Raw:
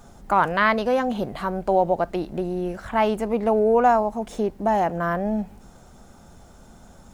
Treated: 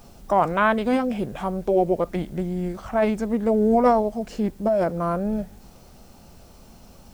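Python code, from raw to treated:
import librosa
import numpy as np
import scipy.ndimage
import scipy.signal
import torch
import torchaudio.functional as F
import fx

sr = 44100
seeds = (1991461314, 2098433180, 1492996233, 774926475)

y = fx.formant_shift(x, sr, semitones=-4)
y = fx.quant_dither(y, sr, seeds[0], bits=10, dither='triangular')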